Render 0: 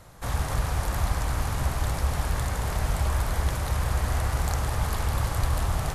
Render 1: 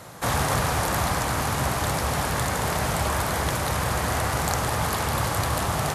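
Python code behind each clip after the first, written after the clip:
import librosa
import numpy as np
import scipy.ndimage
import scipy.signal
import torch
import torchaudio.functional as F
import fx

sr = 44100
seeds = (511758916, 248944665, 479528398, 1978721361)

y = scipy.signal.sosfilt(scipy.signal.butter(2, 140.0, 'highpass', fs=sr, output='sos'), x)
y = fx.rider(y, sr, range_db=10, speed_s=2.0)
y = y * 10.0 ** (7.5 / 20.0)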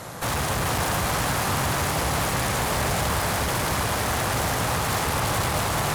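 y = fx.tube_stage(x, sr, drive_db=32.0, bias=0.5)
y = fx.echo_split(y, sr, split_hz=530.0, low_ms=161, high_ms=433, feedback_pct=52, wet_db=-4.5)
y = y * 10.0 ** (8.0 / 20.0)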